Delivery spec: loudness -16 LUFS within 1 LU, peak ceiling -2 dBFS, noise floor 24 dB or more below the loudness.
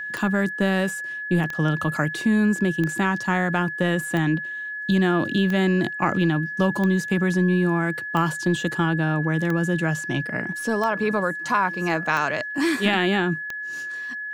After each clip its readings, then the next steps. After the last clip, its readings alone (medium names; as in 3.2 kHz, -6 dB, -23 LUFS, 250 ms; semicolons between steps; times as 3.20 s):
clicks found 11; steady tone 1.7 kHz; tone level -29 dBFS; loudness -23.0 LUFS; peak level -7.0 dBFS; loudness target -16.0 LUFS
-> de-click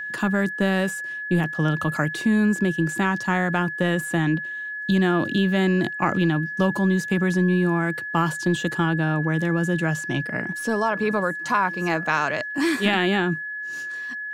clicks found 0; steady tone 1.7 kHz; tone level -29 dBFS
-> band-stop 1.7 kHz, Q 30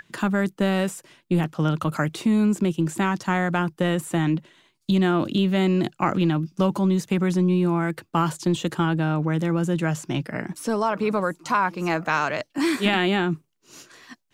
steady tone not found; loudness -23.5 LUFS; peak level -7.0 dBFS; loudness target -16.0 LUFS
-> trim +7.5 dB; peak limiter -2 dBFS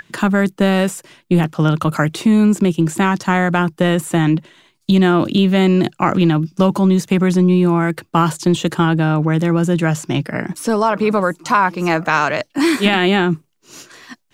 loudness -16.0 LUFS; peak level -2.0 dBFS; noise floor -63 dBFS